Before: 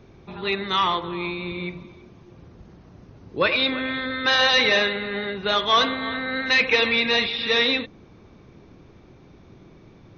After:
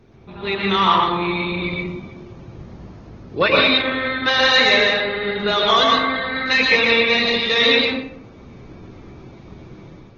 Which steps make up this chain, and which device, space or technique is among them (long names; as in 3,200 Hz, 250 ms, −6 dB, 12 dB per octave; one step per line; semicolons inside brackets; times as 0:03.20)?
speakerphone in a meeting room (convolution reverb RT60 0.70 s, pre-delay 105 ms, DRR −1.5 dB; automatic gain control gain up to 6 dB; level −1 dB; Opus 16 kbit/s 48,000 Hz)